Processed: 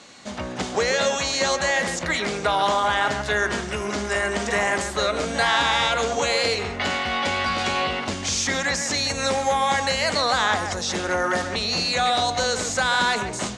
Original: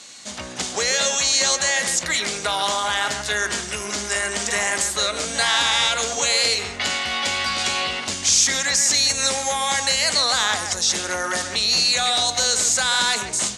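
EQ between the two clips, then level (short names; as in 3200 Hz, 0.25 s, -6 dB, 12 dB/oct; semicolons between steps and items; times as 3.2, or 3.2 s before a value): LPF 1100 Hz 6 dB/oct; +5.5 dB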